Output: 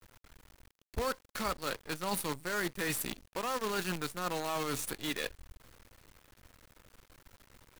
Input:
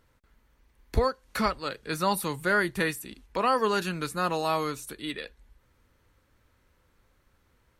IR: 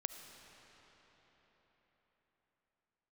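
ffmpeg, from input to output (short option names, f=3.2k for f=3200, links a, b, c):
-af "areverse,acompressor=threshold=-42dB:ratio=5,areverse,acrusher=bits=8:dc=4:mix=0:aa=0.000001,volume=8dB"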